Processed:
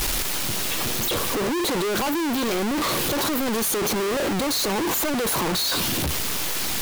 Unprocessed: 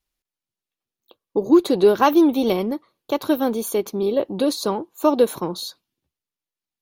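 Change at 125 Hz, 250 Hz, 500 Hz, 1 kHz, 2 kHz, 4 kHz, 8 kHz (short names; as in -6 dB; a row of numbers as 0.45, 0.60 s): +5.0, -5.5, -6.5, -2.0, +8.0, +8.5, +12.0 dB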